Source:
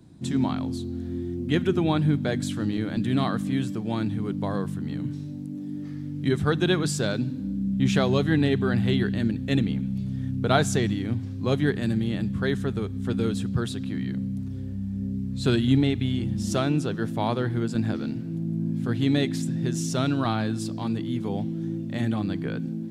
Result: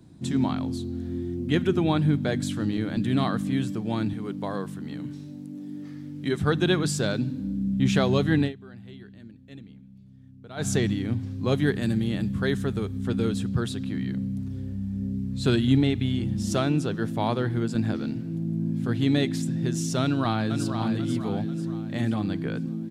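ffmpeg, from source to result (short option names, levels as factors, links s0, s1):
-filter_complex "[0:a]asettb=1/sr,asplit=3[s0][s1][s2];[s0]atrim=end=4.134[s3];[s1]atrim=start=4.13:end=6.41,asetpts=PTS-STARTPTS,afade=t=in:d=0.004:c=qsin,afade=t=out:st=2.276:d=0.004:c=qsin,highpass=f=270:p=1[s4];[s2]atrim=start=6.406[s5];[s3][s4]acrossfade=d=0.004:c1=hsin:c2=qsin[s6];[s6][s5]acrossfade=d=0.004:c1=qsin:c2=hsin,asettb=1/sr,asplit=3[s7][s8][s9];[s7]atrim=end=11.554[s10];[s8]atrim=start=11.55:end=12.98,asetpts=PTS-STARTPTS,afade=t=in:d=0.004:c=qsin,afade=t=out:st=1.426:d=0.004:c=qsin,highshelf=f=7100:g=5.5[s11];[s9]atrim=start=12.976[s12];[s10][s11]acrossfade=d=0.004:c1=hsin:c2=qsin[s13];[s13][s12]acrossfade=d=0.004:c1=qsin:c2=hsin,asplit=2[s14][s15];[s15]afade=t=in:st=20.01:d=0.01,afade=t=out:st=20.68:d=0.01,aecho=0:1:490|980|1470|1960|2450:0.446684|0.201008|0.0904534|0.040704|0.0183168[s16];[s14][s16]amix=inputs=2:normalize=0,asplit=3[s17][s18][s19];[s17]atrim=end=8.53,asetpts=PTS-STARTPTS,afade=t=out:st=8.41:d=0.12:silence=0.0891251[s20];[s18]atrim=start=8.53:end=10.56,asetpts=PTS-STARTPTS,volume=0.0891[s21];[s19]atrim=start=10.56,asetpts=PTS-STARTPTS,afade=t=in:d=0.12:silence=0.0891251[s22];[s20][s21][s22]concat=n=3:v=0:a=1"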